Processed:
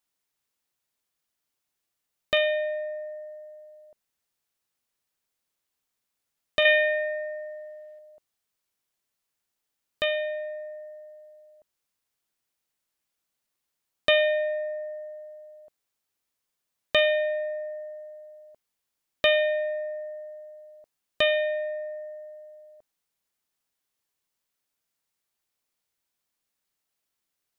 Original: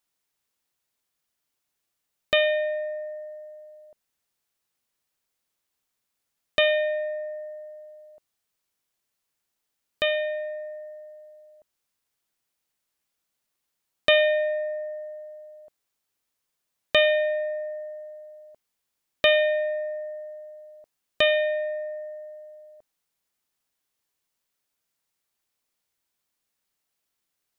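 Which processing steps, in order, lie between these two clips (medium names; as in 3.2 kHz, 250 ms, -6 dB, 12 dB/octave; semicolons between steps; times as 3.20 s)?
rattle on loud lows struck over -46 dBFS, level -22 dBFS; 6.65–7.99 s: peaking EQ 2 kHz +11 dB 1.6 oct; trim -2 dB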